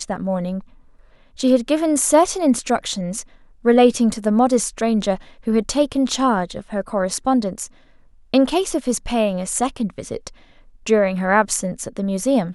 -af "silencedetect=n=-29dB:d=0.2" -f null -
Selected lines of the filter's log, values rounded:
silence_start: 0.60
silence_end: 1.39 | silence_duration: 0.79
silence_start: 3.22
silence_end: 3.65 | silence_duration: 0.43
silence_start: 5.16
silence_end: 5.47 | silence_duration: 0.31
silence_start: 7.66
silence_end: 8.34 | silence_duration: 0.68
silence_start: 10.28
silence_end: 10.86 | silence_duration: 0.58